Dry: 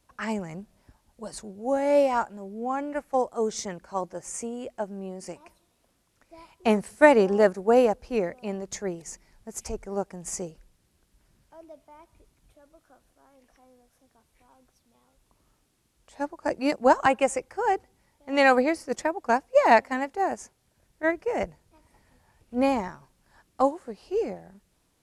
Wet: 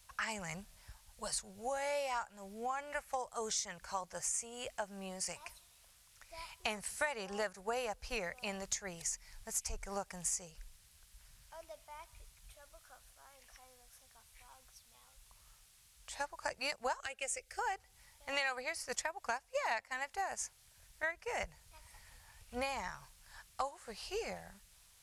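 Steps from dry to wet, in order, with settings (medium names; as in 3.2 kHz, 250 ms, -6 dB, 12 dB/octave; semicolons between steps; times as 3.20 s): amplifier tone stack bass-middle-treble 10-0-10; compression 5:1, threshold -46 dBFS, peak gain reduction 22 dB; 17.00–17.59 s: static phaser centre 400 Hz, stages 4; trim +10 dB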